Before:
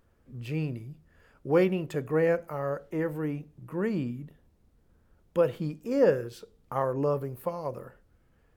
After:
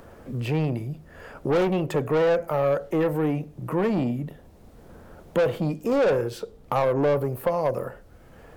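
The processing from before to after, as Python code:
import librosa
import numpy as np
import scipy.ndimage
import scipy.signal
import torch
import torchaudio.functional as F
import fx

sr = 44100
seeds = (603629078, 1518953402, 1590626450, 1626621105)

y = 10.0 ** (-29.0 / 20.0) * np.tanh(x / 10.0 ** (-29.0 / 20.0))
y = fx.peak_eq(y, sr, hz=660.0, db=6.5, octaves=1.2)
y = fx.band_squash(y, sr, depth_pct=40)
y = F.gain(torch.from_numpy(y), 8.0).numpy()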